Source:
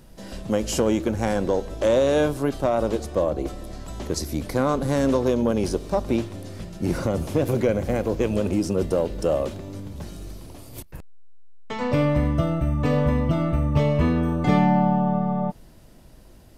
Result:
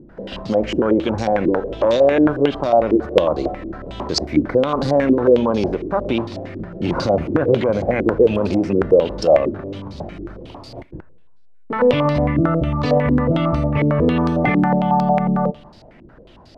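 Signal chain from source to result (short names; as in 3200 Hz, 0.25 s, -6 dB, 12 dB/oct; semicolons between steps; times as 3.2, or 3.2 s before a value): low shelf 72 Hz -9.5 dB; plate-style reverb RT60 1.1 s, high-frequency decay 0.9×, DRR 19.5 dB; maximiser +15 dB; stepped low-pass 11 Hz 330–4600 Hz; gain -9.5 dB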